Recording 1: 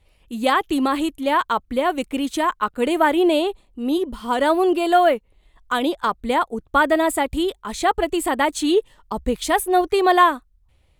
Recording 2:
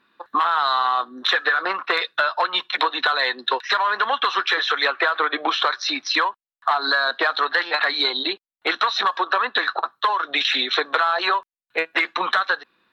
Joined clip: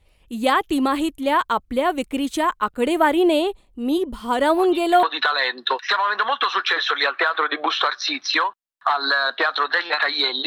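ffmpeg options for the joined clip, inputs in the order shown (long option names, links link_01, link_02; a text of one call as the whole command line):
ffmpeg -i cue0.wav -i cue1.wav -filter_complex "[1:a]asplit=2[link_01][link_02];[0:a]apad=whole_dur=10.46,atrim=end=10.46,atrim=end=5.032[link_03];[link_02]atrim=start=2.838:end=8.27[link_04];[link_01]atrim=start=2.3:end=2.84,asetpts=PTS-STARTPTS,volume=-15dB,afade=type=in:duration=0.004:curve=hsin,afade=type=out:start_time=0.536:duration=0.004:curve=hsin,adelay=198009S[link_05];[link_03][link_04]acrossfade=duration=0.004:curve1=hsin:curve2=hsin[link_06];[link_06][link_05]amix=inputs=2:normalize=0" out.wav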